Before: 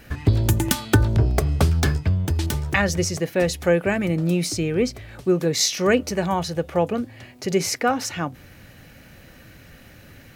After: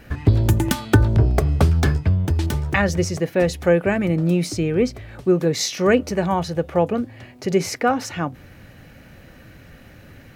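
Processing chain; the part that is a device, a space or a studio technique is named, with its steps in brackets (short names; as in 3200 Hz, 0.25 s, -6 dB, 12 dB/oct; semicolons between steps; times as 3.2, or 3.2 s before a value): behind a face mask (high shelf 2800 Hz -7.5 dB); gain +2.5 dB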